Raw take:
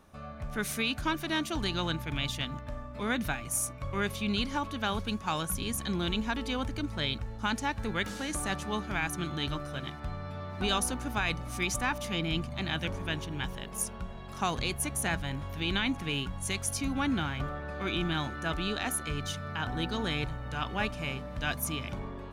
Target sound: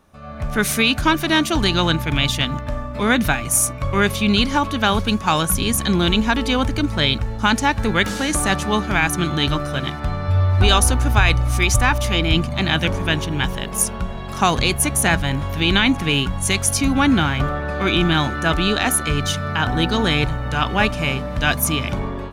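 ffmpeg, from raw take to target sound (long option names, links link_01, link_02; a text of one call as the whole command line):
ffmpeg -i in.wav -filter_complex "[0:a]asettb=1/sr,asplit=3[link_01][link_02][link_03];[link_01]atrim=end=10.284[link_04];[link_02]atrim=start=10.28:end=12.33,asetpts=PTS-STARTPTS,afade=type=in:duration=0.004:curve=qsin,afade=type=out:start_time=2.046:duration=0.004:curve=qsin,lowshelf=frequency=130:width_type=q:width=3:gain=7.5[link_05];[link_03]atrim=start=12.326[link_06];[link_04][link_05]acrossfade=duration=0.004:curve1=hsin:curve2=qsin[link_07];[link_07][link_06]acrossfade=duration=0.004:curve1=qsin:curve2=hsin,dynaudnorm=framelen=210:gausssize=3:maxgain=12dB,volume=2dB" out.wav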